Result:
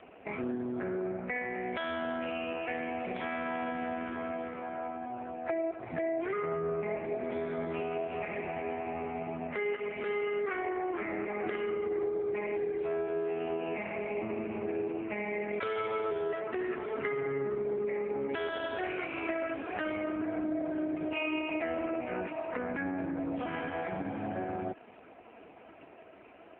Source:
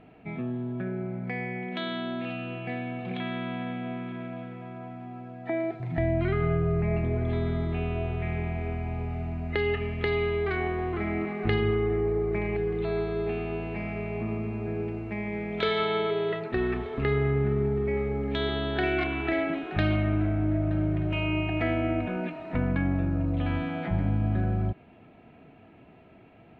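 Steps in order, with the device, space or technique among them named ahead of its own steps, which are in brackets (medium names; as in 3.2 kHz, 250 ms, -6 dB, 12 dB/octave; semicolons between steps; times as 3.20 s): voicemail (band-pass 380–2900 Hz; compression 6:1, threshold -37 dBFS, peak gain reduction 12 dB; trim +7.5 dB; AMR-NB 4.75 kbps 8 kHz)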